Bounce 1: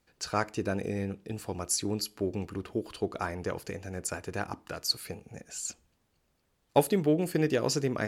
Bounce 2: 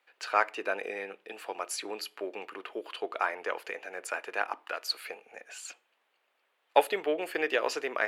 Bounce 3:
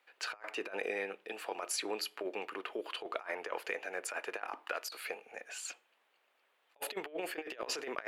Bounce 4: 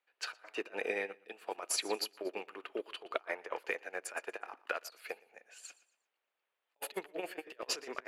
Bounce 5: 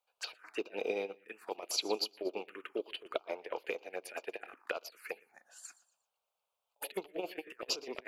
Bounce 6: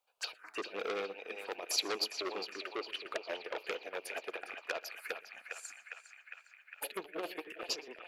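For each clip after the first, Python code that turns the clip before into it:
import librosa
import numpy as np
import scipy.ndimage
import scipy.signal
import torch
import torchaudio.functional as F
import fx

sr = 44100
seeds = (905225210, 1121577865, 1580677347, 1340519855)

y1 = scipy.signal.sosfilt(scipy.signal.bessel(4, 690.0, 'highpass', norm='mag', fs=sr, output='sos'), x)
y1 = fx.high_shelf_res(y1, sr, hz=4000.0, db=-11.5, q=1.5)
y1 = y1 * 10.0 ** (5.5 / 20.0)
y2 = fx.over_compress(y1, sr, threshold_db=-35.0, ratio=-0.5)
y2 = y2 * 10.0 ** (-3.5 / 20.0)
y3 = fx.echo_feedback(y2, sr, ms=118, feedback_pct=35, wet_db=-13)
y3 = fx.upward_expand(y3, sr, threshold_db=-46.0, expansion=2.5)
y3 = y3 * 10.0 ** (4.5 / 20.0)
y4 = fx.env_phaser(y3, sr, low_hz=310.0, high_hz=1800.0, full_db=-36.5)
y4 = y4 * 10.0 ** (3.0 / 20.0)
y5 = fx.fade_out_tail(y4, sr, length_s=0.52)
y5 = fx.echo_banded(y5, sr, ms=406, feedback_pct=77, hz=2000.0, wet_db=-6)
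y5 = fx.transformer_sat(y5, sr, knee_hz=3900.0)
y5 = y5 * 10.0 ** (2.0 / 20.0)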